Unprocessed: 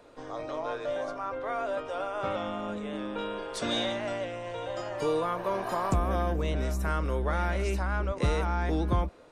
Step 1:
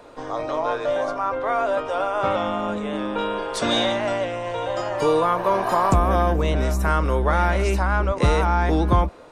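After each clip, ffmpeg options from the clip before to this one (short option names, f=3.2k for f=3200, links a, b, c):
-af "equalizer=f=940:t=o:w=0.93:g=4,volume=8dB"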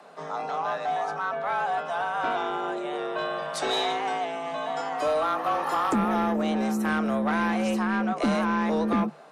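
-af "afreqshift=150,asoftclip=type=tanh:threshold=-14dB,volume=-4dB"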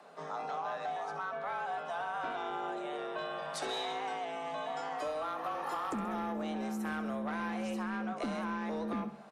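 -af "acompressor=threshold=-28dB:ratio=6,aecho=1:1:66|132|198|264|330|396:0.224|0.123|0.0677|0.0372|0.0205|0.0113,volume=-6dB"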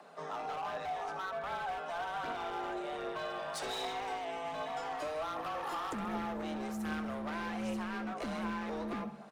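-af "volume=35dB,asoftclip=hard,volume=-35dB,aphaser=in_gain=1:out_gain=1:delay=3.5:decay=0.28:speed=1.3:type=triangular"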